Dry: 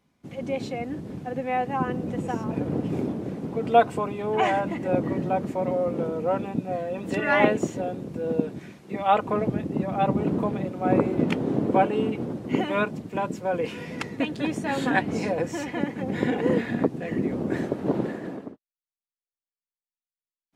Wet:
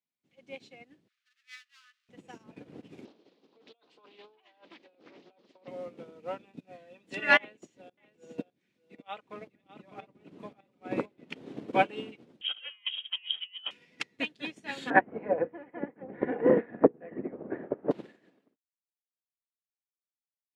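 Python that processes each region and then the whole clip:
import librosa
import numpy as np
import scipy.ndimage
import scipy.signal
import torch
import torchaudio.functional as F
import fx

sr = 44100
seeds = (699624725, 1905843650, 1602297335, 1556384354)

y = fx.chain(x, sr, fx.dead_time(dead_ms=0.11),
    fx.cheby1_highpass(hz=1200.0, order=6),
    fx.high_shelf(hz=7800.0, db=-10.5), at=(1.08, 2.09))
y = fx.chain(y, sr, fx.cabinet(low_hz=390.0, low_slope=12, high_hz=5500.0, hz=(660.0, 1500.0, 2200.0, 4200.0), db=(-4, -8, -7, 7)),
    fx.over_compress(threshold_db=-33.0, ratio=-1.0),
    fx.doppler_dist(depth_ms=0.4), at=(3.05, 5.68))
y = fx.chain(y, sr, fx.tremolo_shape(shape='saw_up', hz=1.9, depth_pct=85),
    fx.echo_single(ms=603, db=-7.0), at=(7.37, 11.36))
y = fx.chain(y, sr, fx.highpass(hz=380.0, slope=12),
    fx.over_compress(threshold_db=-37.0, ratio=-1.0),
    fx.freq_invert(carrier_hz=3500), at=(12.41, 13.71))
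y = fx.chain(y, sr, fx.cheby2_lowpass(hz=6800.0, order=4, stop_db=70),
    fx.peak_eq(hz=530.0, db=7.5, octaves=1.6),
    fx.hum_notches(base_hz=60, count=9), at=(14.9, 17.91))
y = fx.weighting(y, sr, curve='D')
y = fx.upward_expand(y, sr, threshold_db=-36.0, expansion=2.5)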